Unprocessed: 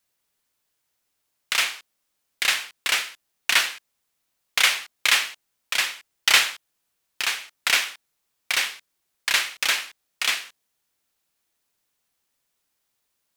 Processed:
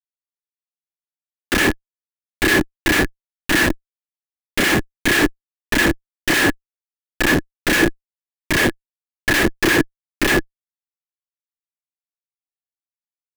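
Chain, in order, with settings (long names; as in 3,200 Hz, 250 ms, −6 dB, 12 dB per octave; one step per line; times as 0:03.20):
comparator with hysteresis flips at −25.5 dBFS
hollow resonant body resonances 320/1,700 Hz, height 15 dB, ringing for 30 ms
level +8.5 dB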